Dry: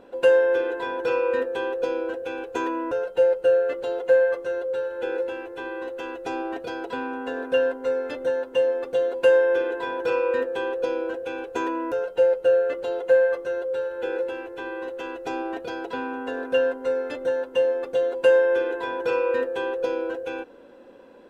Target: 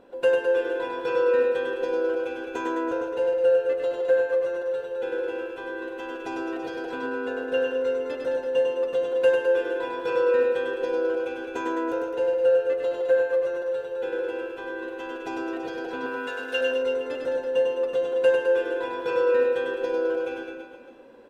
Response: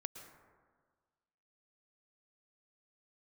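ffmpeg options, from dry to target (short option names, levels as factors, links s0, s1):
-filter_complex "[0:a]asettb=1/sr,asplit=3[s0][s1][s2];[s0]atrim=end=16.064[s3];[s1]atrim=start=16.06:end=16.61,asetpts=PTS-STARTPTS,afade=t=in:d=0.004:c=qsin,afade=t=out:st=0.546:d=0.004:c=qsin,tiltshelf=f=970:g=-9.5[s4];[s2]atrim=start=16.606[s5];[s3][s4]acrossfade=d=0.004:c1=hsin:c2=qsin[s6];[s6][s5]acrossfade=d=0.004:c1=qsin:c2=hsin,aecho=1:1:100|210|331|464.1|610.5:0.631|0.398|0.251|0.158|0.1[s7];[1:a]atrim=start_sample=2205,afade=t=out:st=0.21:d=0.01,atrim=end_sample=9702[s8];[s7][s8]afir=irnorm=-1:irlink=0"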